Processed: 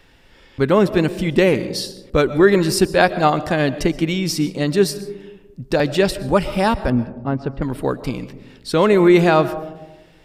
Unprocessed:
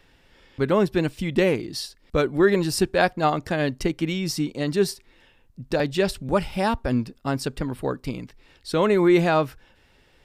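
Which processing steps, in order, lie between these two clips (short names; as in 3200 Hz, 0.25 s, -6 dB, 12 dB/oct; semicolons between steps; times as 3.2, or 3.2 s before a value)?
6.9–7.62 tape spacing loss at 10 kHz 44 dB; digital reverb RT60 1.1 s, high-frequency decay 0.25×, pre-delay 85 ms, DRR 14.5 dB; gain +5.5 dB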